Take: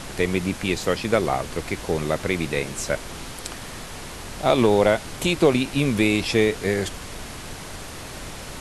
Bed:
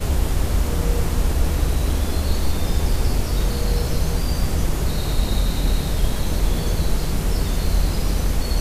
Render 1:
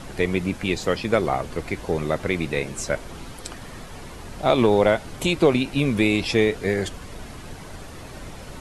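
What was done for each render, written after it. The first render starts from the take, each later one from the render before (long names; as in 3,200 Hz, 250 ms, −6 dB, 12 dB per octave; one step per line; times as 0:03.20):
broadband denoise 8 dB, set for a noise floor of −37 dBFS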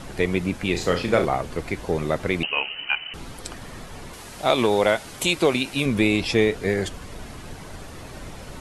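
0:00.71–0:01.25: flutter between parallel walls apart 5.9 metres, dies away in 0.33 s
0:02.43–0:03.14: voice inversion scrambler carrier 3,000 Hz
0:04.13–0:05.86: spectral tilt +2 dB per octave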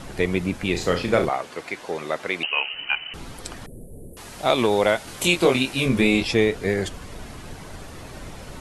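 0:01.29–0:02.74: meter weighting curve A
0:03.66–0:04.17: elliptic band-stop filter 510–10,000 Hz
0:05.05–0:06.23: double-tracking delay 23 ms −3 dB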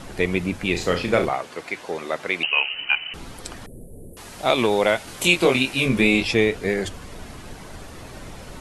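mains-hum notches 50/100/150 Hz
dynamic equaliser 2,500 Hz, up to +4 dB, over −35 dBFS, Q 2.4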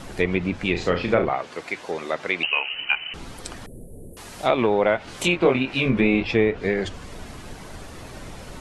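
treble cut that deepens with the level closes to 1,900 Hz, closed at −15.5 dBFS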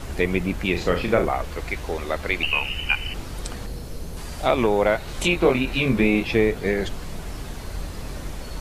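mix in bed −13.5 dB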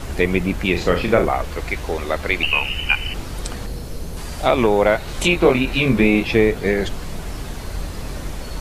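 level +4 dB
brickwall limiter −1 dBFS, peak gain reduction 1 dB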